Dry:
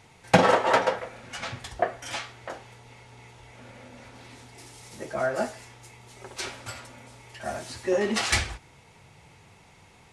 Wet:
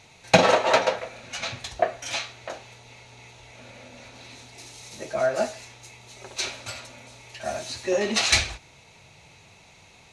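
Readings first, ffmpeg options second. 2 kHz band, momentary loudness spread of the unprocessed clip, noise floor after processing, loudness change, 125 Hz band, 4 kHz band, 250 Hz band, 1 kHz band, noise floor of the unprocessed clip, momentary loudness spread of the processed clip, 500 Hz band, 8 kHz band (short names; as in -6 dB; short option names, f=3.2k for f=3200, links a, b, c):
+2.0 dB, 25 LU, -53 dBFS, +2.0 dB, -1.0 dB, +6.5 dB, -1.0 dB, +0.5 dB, -55 dBFS, 24 LU, +2.5 dB, +5.5 dB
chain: -af "equalizer=f=630:t=o:w=0.33:g=6,equalizer=f=2.5k:t=o:w=0.33:g=8,equalizer=f=4k:t=o:w=0.33:g=11,equalizer=f=6.3k:t=o:w=0.33:g=9,volume=-1dB"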